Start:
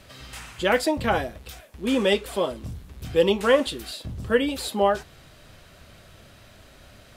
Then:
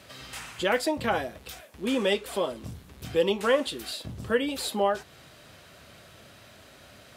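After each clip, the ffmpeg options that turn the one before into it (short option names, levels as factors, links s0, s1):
-filter_complex "[0:a]lowshelf=f=170:g=-5.5,asplit=2[s0][s1];[s1]acompressor=threshold=0.0355:ratio=6,volume=1.12[s2];[s0][s2]amix=inputs=2:normalize=0,highpass=75,volume=0.501"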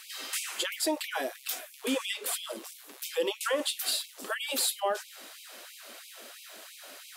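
-af "highshelf=f=6800:g=11.5,alimiter=limit=0.0891:level=0:latency=1:release=163,afftfilt=real='re*gte(b*sr/1024,210*pow(2200/210,0.5+0.5*sin(2*PI*3*pts/sr)))':imag='im*gte(b*sr/1024,210*pow(2200/210,0.5+0.5*sin(2*PI*3*pts/sr)))':win_size=1024:overlap=0.75,volume=1.41"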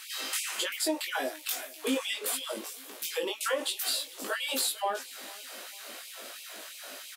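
-filter_complex "[0:a]acompressor=threshold=0.02:ratio=2,asplit=2[s0][s1];[s1]adelay=19,volume=0.708[s2];[s0][s2]amix=inputs=2:normalize=0,aecho=1:1:448|896|1344:0.0841|0.0328|0.0128,volume=1.26"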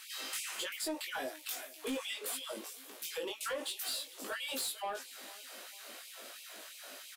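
-af "asoftclip=type=tanh:threshold=0.0562,volume=0.531"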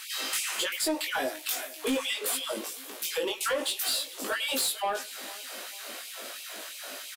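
-filter_complex "[0:a]asplit=2[s0][s1];[s1]adelay=100,highpass=300,lowpass=3400,asoftclip=type=hard:threshold=0.0119,volume=0.126[s2];[s0][s2]amix=inputs=2:normalize=0,volume=2.82"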